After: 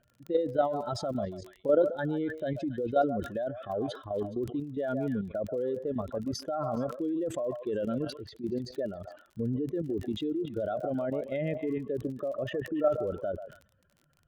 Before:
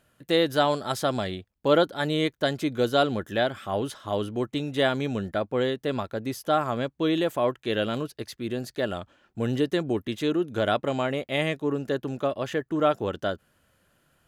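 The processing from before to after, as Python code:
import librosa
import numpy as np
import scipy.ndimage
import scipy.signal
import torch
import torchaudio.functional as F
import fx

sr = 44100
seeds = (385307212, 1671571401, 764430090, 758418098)

y = fx.spec_expand(x, sr, power=2.2)
y = fx.air_absorb(y, sr, metres=100.0)
y = fx.echo_stepped(y, sr, ms=139, hz=860.0, octaves=1.4, feedback_pct=70, wet_db=-6.0)
y = fx.dmg_crackle(y, sr, seeds[0], per_s=29.0, level_db=-41.0)
y = fx.level_steps(y, sr, step_db=10)
y = fx.dynamic_eq(y, sr, hz=970.0, q=2.1, threshold_db=-48.0, ratio=4.0, max_db=-5)
y = fx.sustainer(y, sr, db_per_s=120.0)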